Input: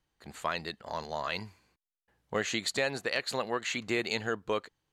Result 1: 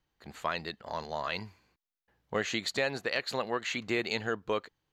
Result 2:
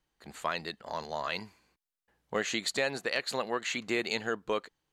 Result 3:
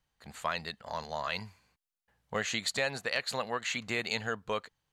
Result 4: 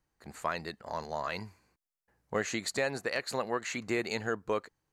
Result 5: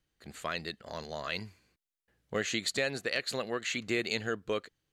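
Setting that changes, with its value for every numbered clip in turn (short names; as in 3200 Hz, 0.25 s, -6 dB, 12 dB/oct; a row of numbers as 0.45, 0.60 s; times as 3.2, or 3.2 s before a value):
bell, frequency: 9100, 97, 340, 3300, 910 Hz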